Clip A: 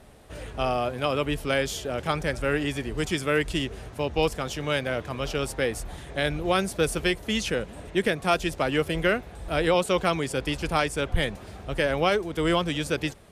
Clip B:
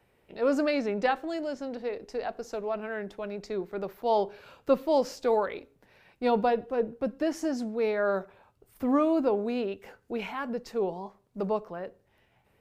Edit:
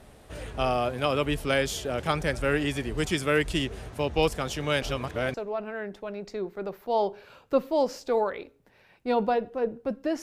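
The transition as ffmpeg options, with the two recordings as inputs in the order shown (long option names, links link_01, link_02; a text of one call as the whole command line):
ffmpeg -i cue0.wav -i cue1.wav -filter_complex "[0:a]apad=whole_dur=10.22,atrim=end=10.22,asplit=2[link_01][link_02];[link_01]atrim=end=4.822[link_03];[link_02]atrim=start=4.818:end=5.342,asetpts=PTS-STARTPTS,areverse[link_04];[1:a]atrim=start=2.498:end=7.38[link_05];[link_03][link_04]acrossfade=duration=0.004:curve1=hsin:curve2=hsin[link_06];[link_06][link_05]acrossfade=duration=0.004:curve1=hsin:curve2=hsin" out.wav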